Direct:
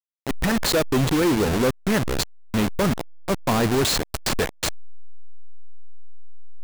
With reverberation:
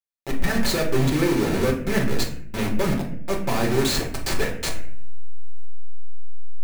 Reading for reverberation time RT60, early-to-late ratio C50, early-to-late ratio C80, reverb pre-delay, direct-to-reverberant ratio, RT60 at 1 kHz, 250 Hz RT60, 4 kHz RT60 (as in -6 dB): 0.60 s, 7.5 dB, 11.0 dB, 5 ms, -2.0 dB, 0.50 s, 0.95 s, 0.40 s